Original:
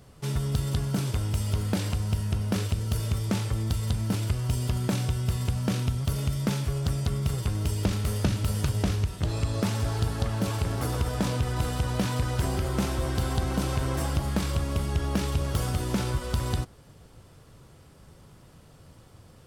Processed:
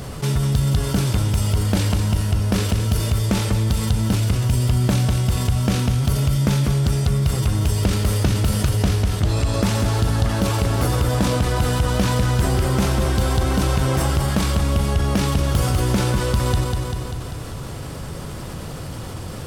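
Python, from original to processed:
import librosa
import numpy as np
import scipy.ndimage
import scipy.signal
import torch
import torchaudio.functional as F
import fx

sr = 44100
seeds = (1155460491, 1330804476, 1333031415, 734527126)

p1 = x + fx.echo_feedback(x, sr, ms=196, feedback_pct=49, wet_db=-8, dry=0)
p2 = fx.env_flatten(p1, sr, amount_pct=50)
y = F.gain(torch.from_numpy(p2), 4.5).numpy()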